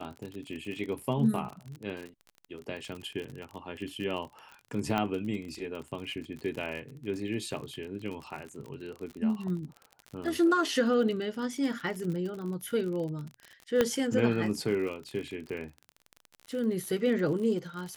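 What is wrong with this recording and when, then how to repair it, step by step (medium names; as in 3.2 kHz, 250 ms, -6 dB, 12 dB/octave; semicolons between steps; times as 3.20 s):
crackle 47 per s -36 dBFS
4.98 s: pop -16 dBFS
13.81 s: pop -11 dBFS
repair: de-click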